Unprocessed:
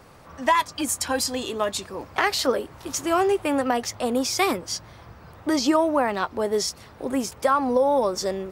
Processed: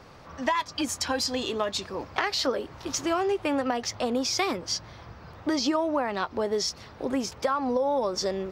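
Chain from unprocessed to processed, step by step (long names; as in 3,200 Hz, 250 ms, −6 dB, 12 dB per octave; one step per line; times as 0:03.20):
high shelf with overshoot 7,100 Hz −9 dB, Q 1.5
downward compressor 3 to 1, threshold −24 dBFS, peak gain reduction 7.5 dB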